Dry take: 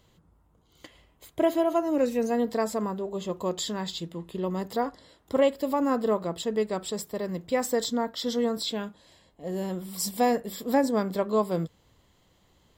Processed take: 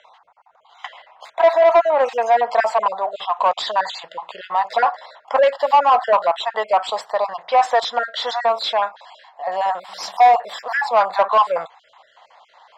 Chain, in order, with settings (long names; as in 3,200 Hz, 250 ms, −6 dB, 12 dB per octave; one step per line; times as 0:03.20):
time-frequency cells dropped at random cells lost 30%
low shelf with overshoot 510 Hz −14 dB, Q 3
mid-hump overdrive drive 21 dB, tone 1,100 Hz, clips at −10 dBFS
three-way crossover with the lows and the highs turned down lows −17 dB, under 440 Hz, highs −23 dB, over 6,300 Hz
level +8 dB